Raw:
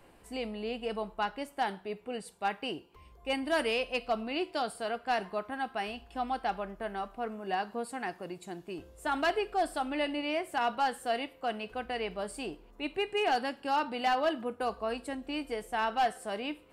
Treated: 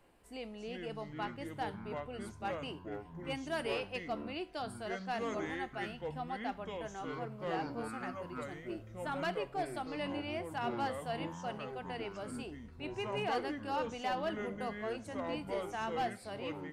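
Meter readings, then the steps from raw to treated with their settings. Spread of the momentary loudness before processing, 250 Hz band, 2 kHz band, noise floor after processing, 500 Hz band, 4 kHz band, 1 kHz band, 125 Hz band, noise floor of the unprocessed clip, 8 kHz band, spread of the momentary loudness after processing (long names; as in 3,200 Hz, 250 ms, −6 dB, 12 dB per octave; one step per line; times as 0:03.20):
9 LU, −3.5 dB, −6.5 dB, −53 dBFS, −5.0 dB, −7.5 dB, −7.5 dB, +6.5 dB, −58 dBFS, −6.0 dB, 7 LU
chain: delay with pitch and tempo change per echo 237 ms, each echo −6 semitones, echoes 3
level −8 dB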